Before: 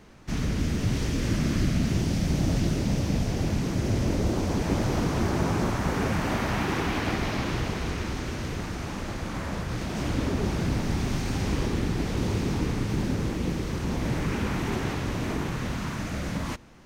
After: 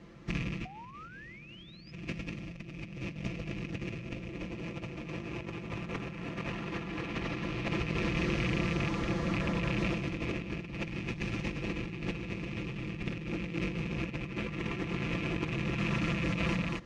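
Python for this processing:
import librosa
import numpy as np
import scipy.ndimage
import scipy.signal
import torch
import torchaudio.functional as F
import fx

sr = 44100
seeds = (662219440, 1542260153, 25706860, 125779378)

y = fx.rattle_buzz(x, sr, strikes_db=-29.0, level_db=-18.0)
y = scipy.signal.sosfilt(scipy.signal.butter(2, 50.0, 'highpass', fs=sr, output='sos'), y)
y = fx.peak_eq(y, sr, hz=820.0, db=-7.5, octaves=0.56)
y = fx.notch(y, sr, hz=1500.0, q=10.0)
y = y + 0.75 * np.pad(y, (int(5.9 * sr / 1000.0), 0))[:len(y)]
y = y + 10.0 ** (-3.0 / 20.0) * np.pad(y, (int(231 * sr / 1000.0), 0))[:len(y)]
y = fx.spec_paint(y, sr, seeds[0], shape='rise', start_s=0.65, length_s=1.27, low_hz=720.0, high_hz=5200.0, level_db=-21.0)
y = scipy.signal.sosfilt(scipy.signal.butter(2, 7000.0, 'lowpass', fs=sr, output='sos'), y)
y = fx.over_compress(y, sr, threshold_db=-28.0, ratio=-0.5)
y = fx.high_shelf(y, sr, hz=3600.0, db=-10.5)
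y = F.gain(torch.from_numpy(y), -6.0).numpy()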